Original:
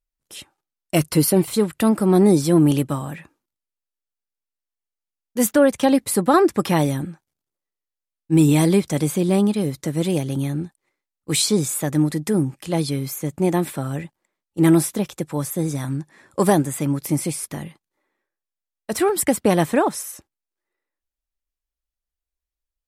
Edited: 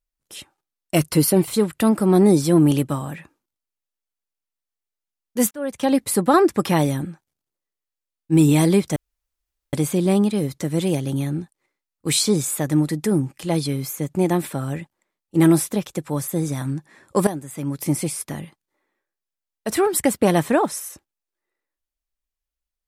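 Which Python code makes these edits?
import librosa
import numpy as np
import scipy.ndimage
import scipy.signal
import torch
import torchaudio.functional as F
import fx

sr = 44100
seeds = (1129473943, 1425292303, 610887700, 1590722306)

y = fx.edit(x, sr, fx.fade_in_span(start_s=5.51, length_s=0.5),
    fx.insert_room_tone(at_s=8.96, length_s=0.77),
    fx.fade_in_from(start_s=16.5, length_s=0.58, curve='qua', floor_db=-12.5), tone=tone)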